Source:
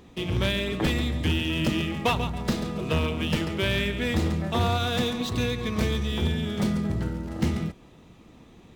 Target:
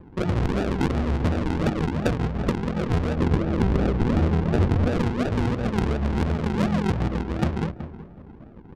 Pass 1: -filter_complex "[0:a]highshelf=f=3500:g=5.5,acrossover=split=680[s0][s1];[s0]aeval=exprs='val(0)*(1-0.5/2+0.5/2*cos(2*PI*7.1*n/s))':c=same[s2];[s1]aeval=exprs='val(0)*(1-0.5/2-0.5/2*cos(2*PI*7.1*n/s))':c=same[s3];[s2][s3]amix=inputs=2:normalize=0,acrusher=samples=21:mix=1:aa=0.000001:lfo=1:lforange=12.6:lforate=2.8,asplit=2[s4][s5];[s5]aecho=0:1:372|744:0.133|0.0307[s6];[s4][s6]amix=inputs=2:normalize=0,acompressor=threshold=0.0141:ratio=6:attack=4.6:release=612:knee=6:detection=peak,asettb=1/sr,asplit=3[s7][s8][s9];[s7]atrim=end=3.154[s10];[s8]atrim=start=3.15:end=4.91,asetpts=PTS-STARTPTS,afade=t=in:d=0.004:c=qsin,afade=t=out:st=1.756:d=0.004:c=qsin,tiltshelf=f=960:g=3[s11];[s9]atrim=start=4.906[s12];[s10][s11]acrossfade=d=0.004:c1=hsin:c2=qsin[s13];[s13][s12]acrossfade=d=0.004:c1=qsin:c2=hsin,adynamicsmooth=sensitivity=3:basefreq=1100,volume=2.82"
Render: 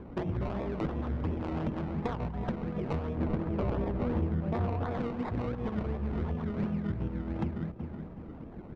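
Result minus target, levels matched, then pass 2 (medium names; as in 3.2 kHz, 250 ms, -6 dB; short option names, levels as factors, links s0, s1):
compression: peak gain reduction +9.5 dB; decimation with a swept rate: distortion -6 dB
-filter_complex "[0:a]highshelf=f=3500:g=5.5,acrossover=split=680[s0][s1];[s0]aeval=exprs='val(0)*(1-0.5/2+0.5/2*cos(2*PI*7.1*n/s))':c=same[s2];[s1]aeval=exprs='val(0)*(1-0.5/2-0.5/2*cos(2*PI*7.1*n/s))':c=same[s3];[s2][s3]amix=inputs=2:normalize=0,acrusher=samples=59:mix=1:aa=0.000001:lfo=1:lforange=35.4:lforate=2.8,asplit=2[s4][s5];[s5]aecho=0:1:372|744:0.133|0.0307[s6];[s4][s6]amix=inputs=2:normalize=0,acompressor=threshold=0.0531:ratio=6:attack=4.6:release=612:knee=6:detection=peak,asettb=1/sr,asplit=3[s7][s8][s9];[s7]atrim=end=3.154[s10];[s8]atrim=start=3.15:end=4.91,asetpts=PTS-STARTPTS,afade=t=in:d=0.004:c=qsin,afade=t=out:st=1.756:d=0.004:c=qsin,tiltshelf=f=960:g=3[s11];[s9]atrim=start=4.906[s12];[s10][s11]acrossfade=d=0.004:c1=hsin:c2=qsin[s13];[s13][s12]acrossfade=d=0.004:c1=qsin:c2=hsin,adynamicsmooth=sensitivity=3:basefreq=1100,volume=2.82"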